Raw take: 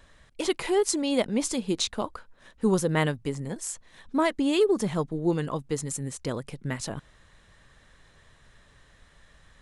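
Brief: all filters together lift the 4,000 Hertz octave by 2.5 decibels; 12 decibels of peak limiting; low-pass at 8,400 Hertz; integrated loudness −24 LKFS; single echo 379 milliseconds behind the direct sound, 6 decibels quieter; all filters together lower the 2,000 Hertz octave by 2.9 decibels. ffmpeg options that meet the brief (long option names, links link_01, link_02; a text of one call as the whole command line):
ffmpeg -i in.wav -af "lowpass=8400,equalizer=frequency=2000:width_type=o:gain=-4.5,equalizer=frequency=4000:width_type=o:gain=4.5,alimiter=limit=-21dB:level=0:latency=1,aecho=1:1:379:0.501,volume=7dB" out.wav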